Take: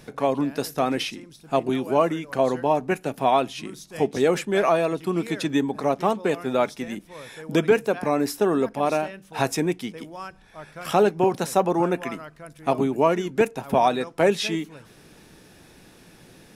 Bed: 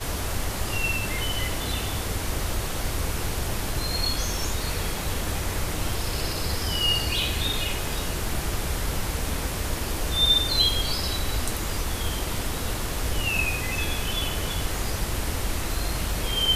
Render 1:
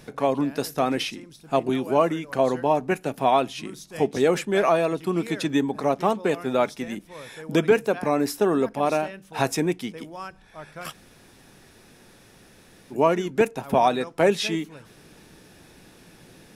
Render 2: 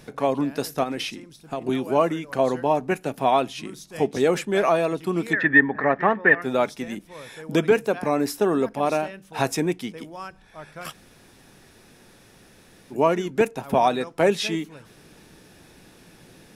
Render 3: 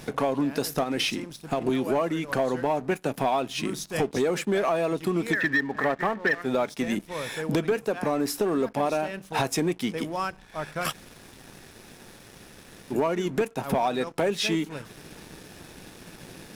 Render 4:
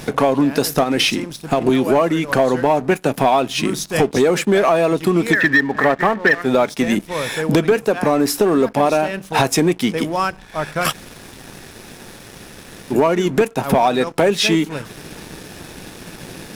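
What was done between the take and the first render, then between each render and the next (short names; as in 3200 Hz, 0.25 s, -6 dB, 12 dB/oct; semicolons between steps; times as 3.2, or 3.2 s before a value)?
10.9–12.93 room tone, crossfade 0.06 s
0.83–1.62 compressor, threshold -24 dBFS; 5.33–6.42 synth low-pass 1800 Hz, resonance Q 16
compressor 5:1, threshold -29 dBFS, peak gain reduction 17 dB; sample leveller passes 2
gain +10 dB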